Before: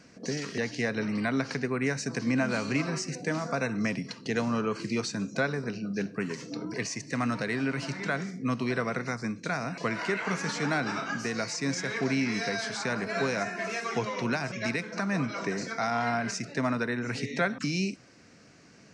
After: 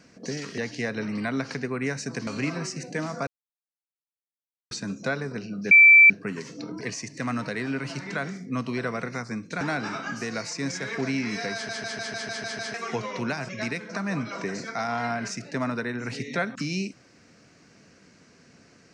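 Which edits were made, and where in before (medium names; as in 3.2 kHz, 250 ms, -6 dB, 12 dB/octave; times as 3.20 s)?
2.27–2.59 s: delete
3.59–5.03 s: mute
6.03 s: add tone 2.33 kHz -9 dBFS 0.39 s
9.54–10.64 s: delete
12.57 s: stutter in place 0.15 s, 8 plays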